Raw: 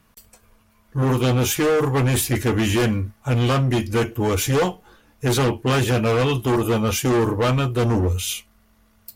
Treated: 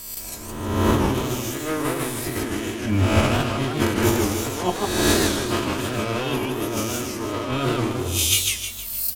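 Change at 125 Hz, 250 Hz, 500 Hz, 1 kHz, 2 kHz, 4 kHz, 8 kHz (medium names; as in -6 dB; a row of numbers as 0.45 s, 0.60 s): -5.0 dB, -1.0 dB, -3.5 dB, -0.5 dB, 0.0 dB, +2.5 dB, +3.0 dB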